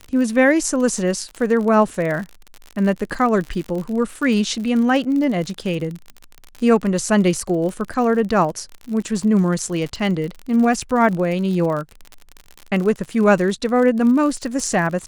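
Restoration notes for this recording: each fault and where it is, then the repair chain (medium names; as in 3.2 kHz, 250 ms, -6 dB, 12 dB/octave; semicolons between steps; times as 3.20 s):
crackle 54 per s -26 dBFS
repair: de-click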